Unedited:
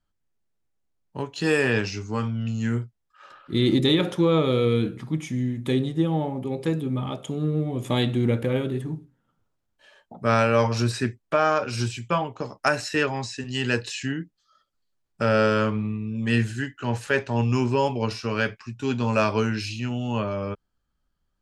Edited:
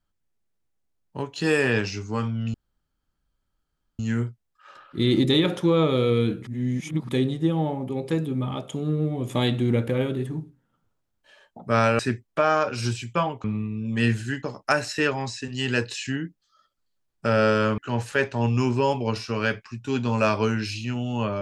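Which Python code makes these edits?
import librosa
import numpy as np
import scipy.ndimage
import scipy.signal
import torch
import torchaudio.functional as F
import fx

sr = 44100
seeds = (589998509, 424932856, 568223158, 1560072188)

y = fx.edit(x, sr, fx.insert_room_tone(at_s=2.54, length_s=1.45),
    fx.reverse_span(start_s=5.02, length_s=0.62),
    fx.cut(start_s=10.54, length_s=0.4),
    fx.move(start_s=15.74, length_s=0.99, to_s=12.39), tone=tone)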